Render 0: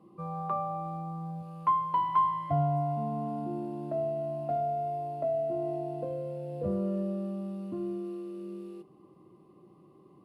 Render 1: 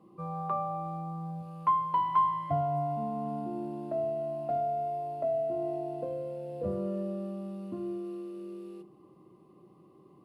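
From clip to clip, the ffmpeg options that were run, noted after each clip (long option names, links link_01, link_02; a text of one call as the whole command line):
ffmpeg -i in.wav -af "bandreject=frequency=49.26:width_type=h:width=4,bandreject=frequency=98.52:width_type=h:width=4,bandreject=frequency=147.78:width_type=h:width=4,bandreject=frequency=197.04:width_type=h:width=4,bandreject=frequency=246.3:width_type=h:width=4,bandreject=frequency=295.56:width_type=h:width=4,bandreject=frequency=344.82:width_type=h:width=4" out.wav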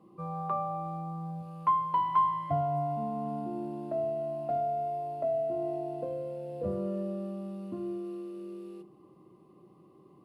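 ffmpeg -i in.wav -af anull out.wav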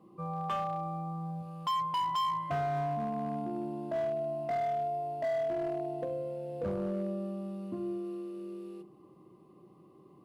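ffmpeg -i in.wav -af "volume=28.5dB,asoftclip=hard,volume=-28.5dB" out.wav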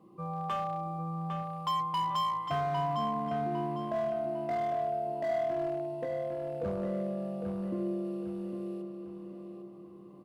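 ffmpeg -i in.wav -filter_complex "[0:a]asplit=2[link_01][link_02];[link_02]adelay=804,lowpass=frequency=4300:poles=1,volume=-5.5dB,asplit=2[link_03][link_04];[link_04]adelay=804,lowpass=frequency=4300:poles=1,volume=0.4,asplit=2[link_05][link_06];[link_06]adelay=804,lowpass=frequency=4300:poles=1,volume=0.4,asplit=2[link_07][link_08];[link_08]adelay=804,lowpass=frequency=4300:poles=1,volume=0.4,asplit=2[link_09][link_10];[link_10]adelay=804,lowpass=frequency=4300:poles=1,volume=0.4[link_11];[link_01][link_03][link_05][link_07][link_09][link_11]amix=inputs=6:normalize=0" out.wav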